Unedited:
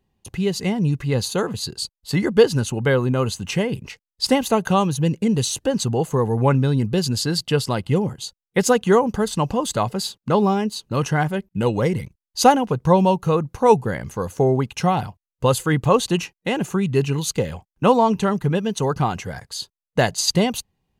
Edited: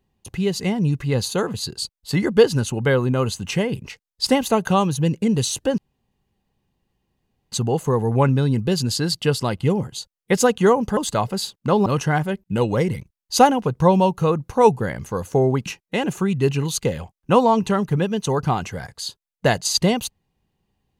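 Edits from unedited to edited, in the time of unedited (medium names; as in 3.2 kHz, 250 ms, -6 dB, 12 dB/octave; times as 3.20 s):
5.78 s: insert room tone 1.74 s
9.23–9.59 s: delete
10.48–10.91 s: delete
14.71–16.19 s: delete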